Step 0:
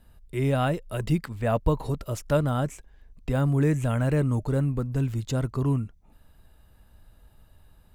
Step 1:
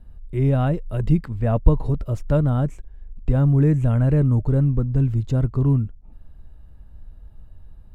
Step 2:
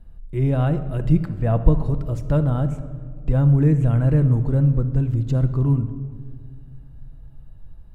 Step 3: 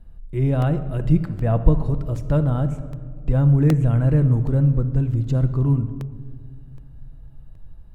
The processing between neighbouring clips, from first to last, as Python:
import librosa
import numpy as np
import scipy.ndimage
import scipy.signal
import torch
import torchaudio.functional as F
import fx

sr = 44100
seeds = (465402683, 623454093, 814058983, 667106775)

y1 = fx.tilt_eq(x, sr, slope=-3.0)
y1 = y1 * librosa.db_to_amplitude(-1.5)
y2 = fx.room_shoebox(y1, sr, seeds[0], volume_m3=2600.0, walls='mixed', distance_m=0.72)
y2 = y2 * librosa.db_to_amplitude(-1.0)
y3 = fx.buffer_crackle(y2, sr, first_s=0.62, period_s=0.77, block=64, kind='repeat')